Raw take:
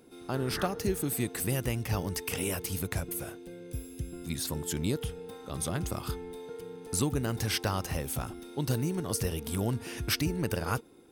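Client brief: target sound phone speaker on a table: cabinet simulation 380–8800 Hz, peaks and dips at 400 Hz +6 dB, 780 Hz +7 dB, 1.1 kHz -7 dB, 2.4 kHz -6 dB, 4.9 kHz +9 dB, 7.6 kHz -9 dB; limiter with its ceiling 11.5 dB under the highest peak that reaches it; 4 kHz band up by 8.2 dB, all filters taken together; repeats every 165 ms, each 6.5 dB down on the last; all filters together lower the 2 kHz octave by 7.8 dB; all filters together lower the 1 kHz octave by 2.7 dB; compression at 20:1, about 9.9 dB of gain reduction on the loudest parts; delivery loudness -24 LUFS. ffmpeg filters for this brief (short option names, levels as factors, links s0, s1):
-af "equalizer=f=1000:t=o:g=-6,equalizer=f=2000:t=o:g=-8,equalizer=f=4000:t=o:g=7.5,acompressor=threshold=0.02:ratio=20,alimiter=level_in=2.51:limit=0.0631:level=0:latency=1,volume=0.398,highpass=f=380:w=0.5412,highpass=f=380:w=1.3066,equalizer=f=400:t=q:w=4:g=6,equalizer=f=780:t=q:w=4:g=7,equalizer=f=1100:t=q:w=4:g=-7,equalizer=f=2400:t=q:w=4:g=-6,equalizer=f=4900:t=q:w=4:g=9,equalizer=f=7600:t=q:w=4:g=-9,lowpass=f=8800:w=0.5412,lowpass=f=8800:w=1.3066,aecho=1:1:165|330|495|660|825|990:0.473|0.222|0.105|0.0491|0.0231|0.0109,volume=8.41"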